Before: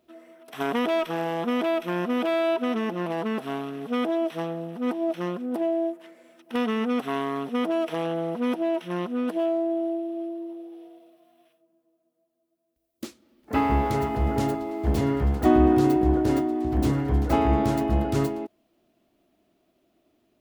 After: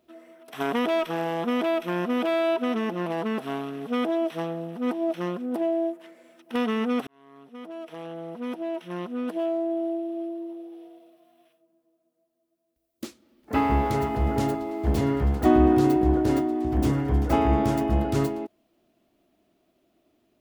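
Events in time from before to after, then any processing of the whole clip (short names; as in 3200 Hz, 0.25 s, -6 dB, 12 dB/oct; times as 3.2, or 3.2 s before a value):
7.07–10.11 fade in linear
16.64–17.98 notch 4100 Hz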